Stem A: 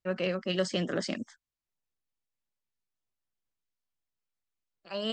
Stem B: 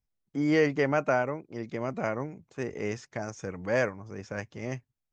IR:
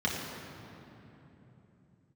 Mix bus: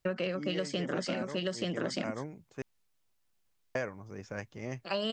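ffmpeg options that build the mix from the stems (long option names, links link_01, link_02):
-filter_complex "[0:a]acontrast=66,volume=3dB,asplit=2[link_01][link_02];[link_02]volume=-5.5dB[link_03];[1:a]volume=-4dB,asplit=3[link_04][link_05][link_06];[link_04]atrim=end=2.62,asetpts=PTS-STARTPTS,afade=type=out:start_time=2.616:duration=0.004:curve=hsin[link_07];[link_05]atrim=start=2.62:end=3.75,asetpts=PTS-STARTPTS,volume=0[link_08];[link_06]atrim=start=3.75,asetpts=PTS-STARTPTS,afade=type=in:duration=0.004:curve=hsin[link_09];[link_07][link_08][link_09]concat=n=3:v=0:a=1[link_10];[link_03]aecho=0:1:881:1[link_11];[link_01][link_10][link_11]amix=inputs=3:normalize=0,acompressor=threshold=-29dB:ratio=16"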